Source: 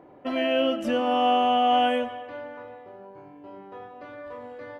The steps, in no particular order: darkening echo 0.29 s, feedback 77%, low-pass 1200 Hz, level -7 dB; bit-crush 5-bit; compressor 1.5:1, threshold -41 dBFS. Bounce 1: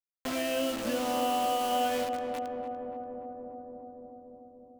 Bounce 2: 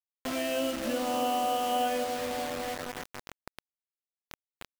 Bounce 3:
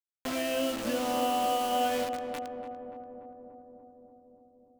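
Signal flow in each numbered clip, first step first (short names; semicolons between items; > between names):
bit-crush > darkening echo > compressor; darkening echo > bit-crush > compressor; bit-crush > compressor > darkening echo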